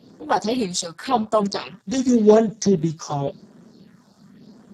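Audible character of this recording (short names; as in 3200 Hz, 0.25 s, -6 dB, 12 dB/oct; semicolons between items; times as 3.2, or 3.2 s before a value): phasing stages 4, 0.91 Hz, lowest notch 350–4300 Hz; a quantiser's noise floor 12-bit, dither none; Speex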